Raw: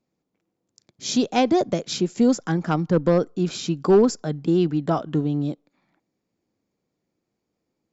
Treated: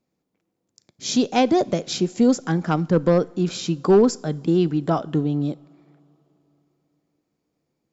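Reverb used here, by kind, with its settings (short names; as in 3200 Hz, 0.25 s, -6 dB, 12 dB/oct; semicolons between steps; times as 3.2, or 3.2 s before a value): two-slope reverb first 0.5 s, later 3.7 s, from -16 dB, DRR 19.5 dB; gain +1 dB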